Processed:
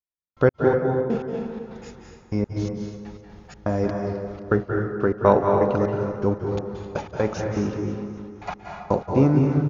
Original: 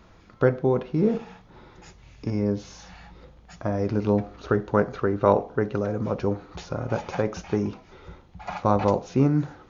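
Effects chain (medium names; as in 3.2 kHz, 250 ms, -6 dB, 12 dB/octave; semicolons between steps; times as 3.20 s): trance gate "...x.x...x.xx.xx" 123 bpm -60 dB; feedback delay 262 ms, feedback 49%, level -14.5 dB; on a send at -2 dB: reverberation RT60 1.5 s, pre-delay 169 ms; on the sum: trim +2.5 dB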